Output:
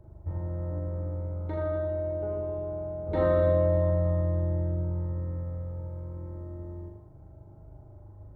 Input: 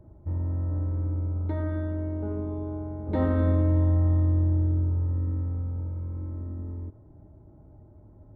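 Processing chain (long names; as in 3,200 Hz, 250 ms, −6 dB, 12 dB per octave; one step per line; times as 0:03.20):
parametric band 240 Hz −11 dB 0.69 octaves
on a send: flutter between parallel walls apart 6.9 metres, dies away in 0.82 s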